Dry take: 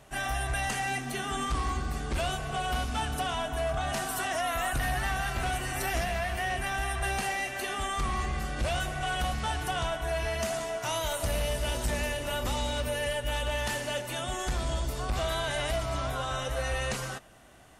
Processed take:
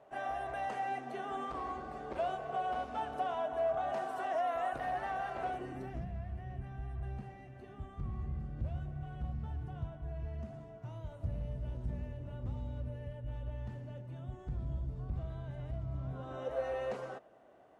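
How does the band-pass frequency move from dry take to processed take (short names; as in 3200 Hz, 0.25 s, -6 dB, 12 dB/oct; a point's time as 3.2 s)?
band-pass, Q 1.5
5.43 s 600 Hz
6.09 s 110 Hz
15.99 s 110 Hz
16.53 s 520 Hz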